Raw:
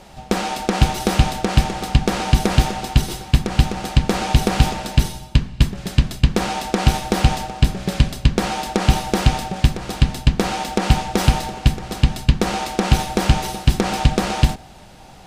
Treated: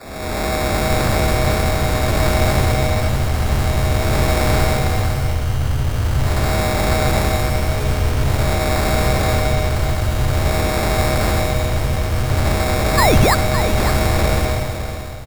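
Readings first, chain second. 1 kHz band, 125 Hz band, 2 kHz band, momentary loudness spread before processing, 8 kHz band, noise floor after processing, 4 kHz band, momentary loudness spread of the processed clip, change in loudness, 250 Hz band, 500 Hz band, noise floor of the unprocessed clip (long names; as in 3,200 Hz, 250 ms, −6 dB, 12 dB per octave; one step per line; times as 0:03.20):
+2.0 dB, +1.5 dB, +5.0 dB, 3 LU, +2.5 dB, −23 dBFS, 0.0 dB, 4 LU, +2.0 dB, −1.0 dB, +6.0 dB, −42 dBFS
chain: spectrum smeared in time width 420 ms
all-pass dispersion lows, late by 66 ms, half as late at 390 Hz
sound drawn into the spectrogram rise, 0:12.97–0:13.35, 1,800–4,700 Hz −21 dBFS
decimation without filtering 14×
frequency shifter −140 Hz
single-tap delay 561 ms −9.5 dB
level +6.5 dB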